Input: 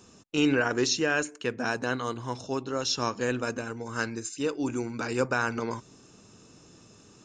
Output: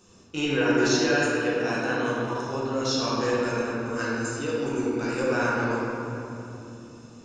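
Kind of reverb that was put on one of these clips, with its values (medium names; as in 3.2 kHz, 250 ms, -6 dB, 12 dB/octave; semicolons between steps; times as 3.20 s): simulated room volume 140 m³, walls hard, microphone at 0.92 m; trim -4.5 dB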